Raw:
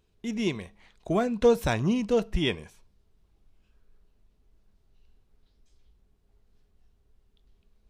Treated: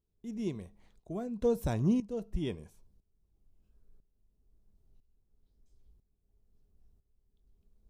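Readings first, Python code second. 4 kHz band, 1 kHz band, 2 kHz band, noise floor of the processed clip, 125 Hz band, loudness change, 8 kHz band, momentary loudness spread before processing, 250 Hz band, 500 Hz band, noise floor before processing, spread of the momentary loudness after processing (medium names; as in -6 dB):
-17.0 dB, -12.5 dB, -17.0 dB, -78 dBFS, -3.5 dB, -7.0 dB, -10.0 dB, 11 LU, -5.0 dB, -9.5 dB, -68 dBFS, 15 LU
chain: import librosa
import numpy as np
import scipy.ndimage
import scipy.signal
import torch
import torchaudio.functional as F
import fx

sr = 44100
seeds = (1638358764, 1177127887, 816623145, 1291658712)

y = fx.tremolo_shape(x, sr, shape='saw_up', hz=1.0, depth_pct=80)
y = fx.peak_eq(y, sr, hz=2300.0, db=-14.5, octaves=3.0)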